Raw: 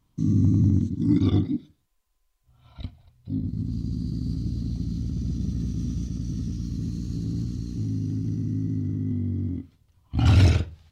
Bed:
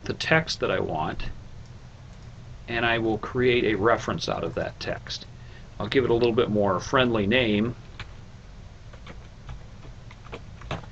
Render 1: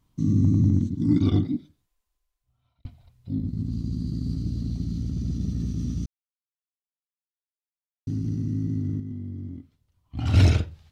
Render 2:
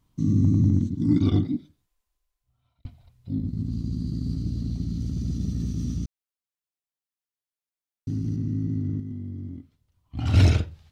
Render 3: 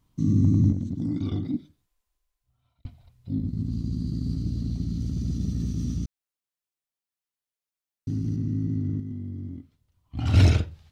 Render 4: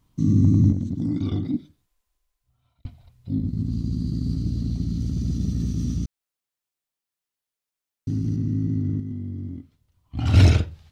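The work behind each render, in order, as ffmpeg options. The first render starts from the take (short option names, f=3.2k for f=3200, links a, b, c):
-filter_complex "[0:a]asplit=6[a][b][c][d][e][f];[a]atrim=end=2.85,asetpts=PTS-STARTPTS,afade=t=out:st=1.47:d=1.38[g];[b]atrim=start=2.85:end=6.06,asetpts=PTS-STARTPTS,afade=t=in:d=0.004:c=hsin,afade=t=out:st=3.206:d=0.004:c=hsin[h];[c]atrim=start=6.06:end=8.07,asetpts=PTS-STARTPTS,volume=0[i];[d]atrim=start=8.07:end=9.002,asetpts=PTS-STARTPTS,afade=t=in:d=0.004:c=hsin[j];[e]atrim=start=8.998:end=10.342,asetpts=PTS-STARTPTS,volume=-7.5dB[k];[f]atrim=start=10.338[l];[g][h][i][j]concat=n=4:v=0:a=1[m];[m][k]acrossfade=d=0.004:c1=hsin:c2=hsin[n];[n][l]acrossfade=d=0.004:c1=hsin:c2=hsin"
-filter_complex "[0:a]asettb=1/sr,asplit=3[a][b][c];[a]atrim=end=5.004[d];[b]atrim=start=5:end=5.97,asetpts=PTS-STARTPTS,afade=t=in:d=0.004:c=qsin,afade=t=out:st=0.966:d=0.004:c=qsin,highshelf=f=5.5k:g=5[e];[c]atrim=start=5.966[f];[d][e]acrossfade=d=0.004:c1=hsin:c2=qsin[g];[g][f]acrossfade=d=0.004:c1=qsin:c2=hsin,asettb=1/sr,asplit=3[h][i][j];[h]atrim=end=8.364[k];[i]atrim=start=8.36:end=8.99,asetpts=PTS-STARTPTS,afade=t=in:d=0.004:c=qsin,afade=t=out:st=0.626:d=0.004:c=qsin,highshelf=f=5.7k:g=-9.5[l];[j]atrim=start=8.986[m];[k][l]acrossfade=d=0.004:c1=hsin:c2=qsin[n];[n][m]acrossfade=d=0.004:c1=qsin:c2=hsin"
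-filter_complex "[0:a]asettb=1/sr,asplit=3[a][b][c];[a]atrim=end=0.724[d];[b]atrim=start=0.72:end=1.54,asetpts=PTS-STARTPTS,afade=t=in:d=0.004:c=qsin,afade=t=out:st=0.816:d=0.004:c=qsin,acompressor=threshold=-24dB:ratio=6:attack=3.2:release=140:knee=1:detection=peak[e];[c]atrim=start=1.536[f];[d][e]acrossfade=d=0.004:c1=hsin:c2=qsin[g];[g][f]acrossfade=d=0.004:c1=qsin:c2=hsin"
-af "volume=3dB"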